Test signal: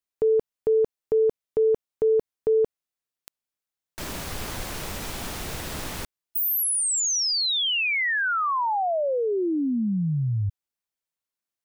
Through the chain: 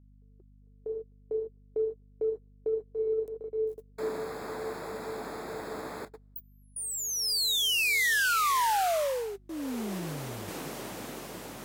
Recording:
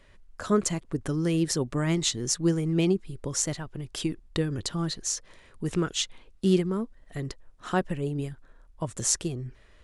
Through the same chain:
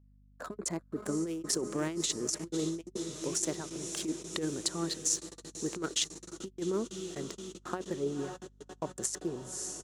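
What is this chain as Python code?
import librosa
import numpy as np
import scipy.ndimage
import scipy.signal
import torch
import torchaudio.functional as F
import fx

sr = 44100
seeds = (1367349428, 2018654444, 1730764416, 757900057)

p1 = fx.wiener(x, sr, points=15)
p2 = fx.high_shelf(p1, sr, hz=6800.0, db=9.5)
p3 = p2 + fx.echo_diffused(p2, sr, ms=539, feedback_pct=74, wet_db=-14.0, dry=0)
p4 = fx.vibrato(p3, sr, rate_hz=0.46, depth_cents=5.6)
p5 = fx.dynamic_eq(p4, sr, hz=370.0, q=2.3, threshold_db=-35.0, ratio=6.0, max_db=6)
p6 = fx.over_compress(p5, sr, threshold_db=-25.0, ratio=-0.5)
p7 = fx.gate_hold(p6, sr, open_db=-28.0, close_db=-29.0, hold_ms=17.0, range_db=-35, attack_ms=4.4, release_ms=31.0)
p8 = scipy.signal.sosfilt(scipy.signal.butter(2, 270.0, 'highpass', fs=sr, output='sos'), p7)
p9 = fx.add_hum(p8, sr, base_hz=50, snr_db=25)
y = p9 * 10.0 ** (-4.5 / 20.0)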